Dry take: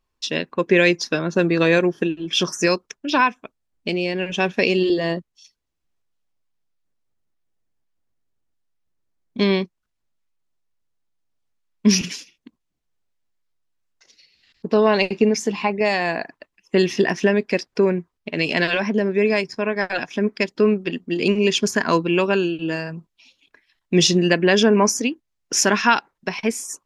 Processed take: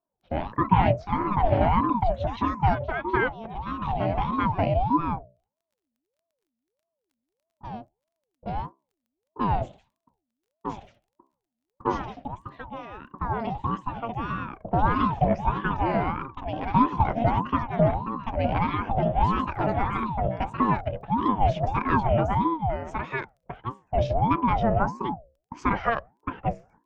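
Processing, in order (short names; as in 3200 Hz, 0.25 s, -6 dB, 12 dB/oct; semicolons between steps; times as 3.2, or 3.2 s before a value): octaver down 1 oct, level 0 dB; low-pass opened by the level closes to 440 Hz, open at -14.5 dBFS; LPF 1300 Hz 12 dB/oct; resonant low shelf 230 Hz -10.5 dB, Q 3; notches 60/120/180/240/300/360/420 Hz; in parallel at -2.5 dB: vocal rider within 3 dB; on the sum: crackle 13/s -45 dBFS; echoes that change speed 89 ms, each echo +2 st, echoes 2, each echo -6 dB; ring modulator with a swept carrier 450 Hz, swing 50%, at 1.6 Hz; gain -9 dB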